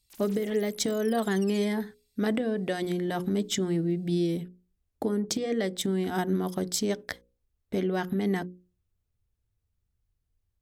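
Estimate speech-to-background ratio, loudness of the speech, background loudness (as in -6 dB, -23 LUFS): 18.5 dB, -29.0 LUFS, -47.5 LUFS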